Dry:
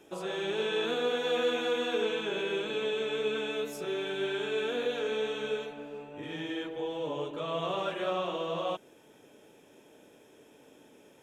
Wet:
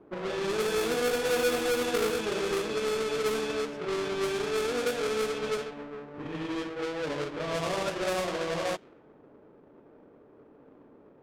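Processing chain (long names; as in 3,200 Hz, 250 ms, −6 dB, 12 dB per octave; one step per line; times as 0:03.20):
each half-wave held at its own peak
low-pass that shuts in the quiet parts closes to 940 Hz, open at −23 dBFS
level −2 dB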